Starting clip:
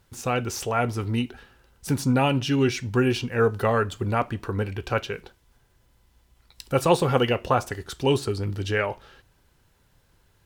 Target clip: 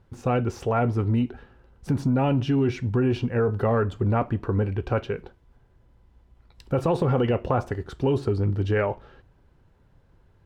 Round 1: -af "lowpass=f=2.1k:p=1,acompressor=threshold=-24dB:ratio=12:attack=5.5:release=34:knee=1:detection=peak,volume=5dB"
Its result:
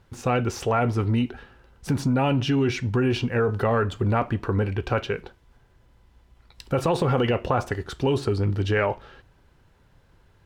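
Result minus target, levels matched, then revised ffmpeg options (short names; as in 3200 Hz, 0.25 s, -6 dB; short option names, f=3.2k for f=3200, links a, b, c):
2000 Hz band +4.5 dB
-af "lowpass=f=690:p=1,acompressor=threshold=-24dB:ratio=12:attack=5.5:release=34:knee=1:detection=peak,volume=5dB"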